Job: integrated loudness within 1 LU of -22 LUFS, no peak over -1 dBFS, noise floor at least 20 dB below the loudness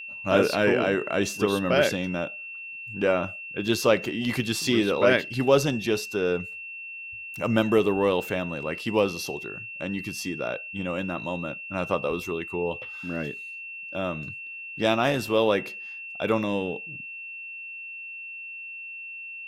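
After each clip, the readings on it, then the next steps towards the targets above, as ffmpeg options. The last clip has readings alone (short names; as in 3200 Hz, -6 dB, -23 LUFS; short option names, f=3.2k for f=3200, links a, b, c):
steady tone 2700 Hz; tone level -36 dBFS; loudness -27.0 LUFS; peak -6.0 dBFS; loudness target -22.0 LUFS
-> -af "bandreject=f=2.7k:w=30"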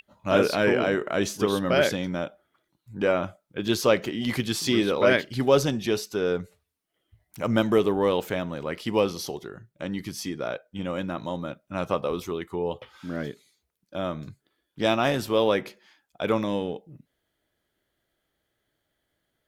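steady tone none; loudness -26.0 LUFS; peak -6.0 dBFS; loudness target -22.0 LUFS
-> -af "volume=4dB"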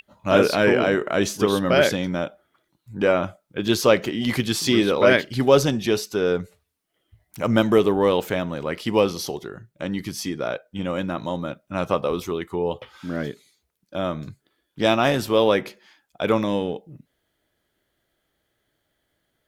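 loudness -22.0 LUFS; peak -2.0 dBFS; noise floor -75 dBFS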